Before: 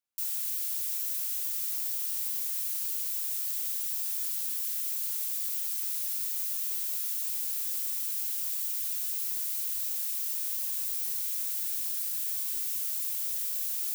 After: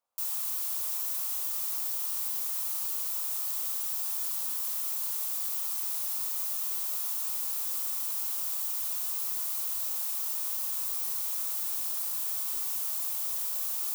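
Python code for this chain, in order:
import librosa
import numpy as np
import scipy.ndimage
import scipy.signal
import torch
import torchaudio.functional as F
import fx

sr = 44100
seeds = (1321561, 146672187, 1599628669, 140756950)

y = fx.band_shelf(x, sr, hz=770.0, db=14.5, octaves=1.7)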